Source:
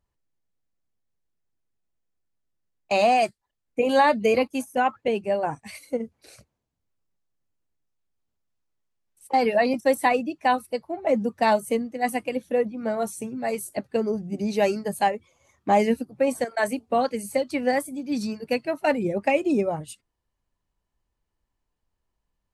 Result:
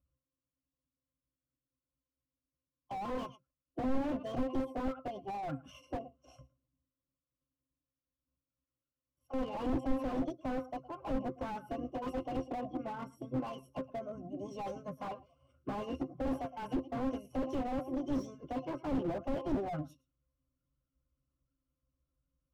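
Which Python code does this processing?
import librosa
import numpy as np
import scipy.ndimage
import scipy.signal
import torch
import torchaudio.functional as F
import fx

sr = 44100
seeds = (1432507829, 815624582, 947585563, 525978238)

p1 = fx.peak_eq(x, sr, hz=1900.0, db=-12.0, octaves=0.21)
p2 = fx.octave_resonator(p1, sr, note='C', decay_s=0.14)
p3 = fx.formant_shift(p2, sr, semitones=5)
p4 = p3 + fx.echo_single(p3, sr, ms=112, db=-23.5, dry=0)
p5 = fx.slew_limit(p4, sr, full_power_hz=5.6)
y = p5 * librosa.db_to_amplitude(5.0)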